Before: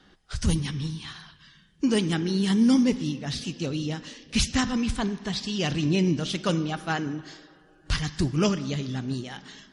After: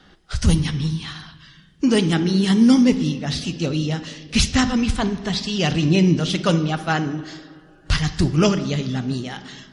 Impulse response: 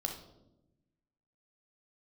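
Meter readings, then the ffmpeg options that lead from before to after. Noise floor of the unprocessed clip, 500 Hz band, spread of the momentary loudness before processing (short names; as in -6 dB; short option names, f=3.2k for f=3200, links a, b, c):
-58 dBFS, +6.5 dB, 12 LU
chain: -filter_complex "[0:a]asplit=2[a][b];[1:a]atrim=start_sample=2205,lowpass=7.3k[c];[b][c]afir=irnorm=-1:irlink=0,volume=-10dB[d];[a][d]amix=inputs=2:normalize=0,volume=4.5dB"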